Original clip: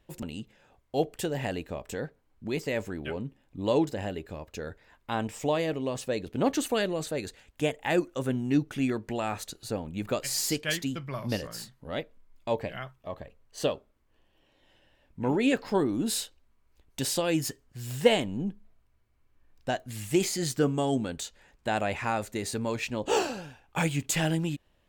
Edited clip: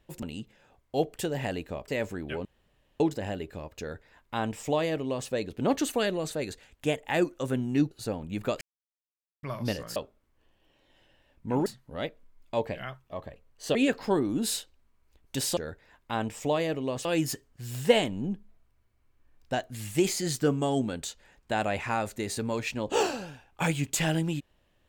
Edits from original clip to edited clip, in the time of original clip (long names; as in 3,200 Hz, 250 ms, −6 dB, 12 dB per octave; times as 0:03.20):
0:01.88–0:02.64: remove
0:03.21–0:03.76: fill with room tone
0:04.56–0:06.04: duplicate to 0:17.21
0:08.67–0:09.55: remove
0:10.25–0:11.07: silence
0:13.69–0:15.39: move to 0:11.60